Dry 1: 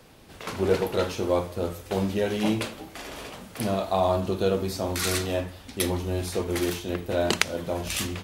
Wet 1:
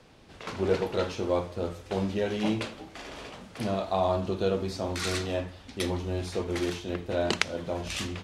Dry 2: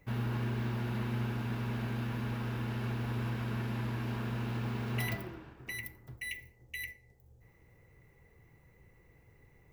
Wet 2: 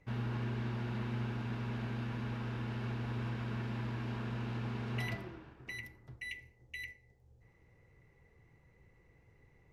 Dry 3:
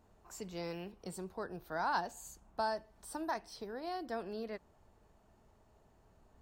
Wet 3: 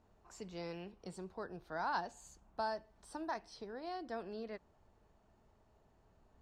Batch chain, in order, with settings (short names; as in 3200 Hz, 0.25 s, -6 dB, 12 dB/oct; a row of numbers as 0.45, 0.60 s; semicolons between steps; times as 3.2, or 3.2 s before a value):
LPF 6600 Hz 12 dB/oct; gain -3 dB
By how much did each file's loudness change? -3.0, -3.0, -3.0 LU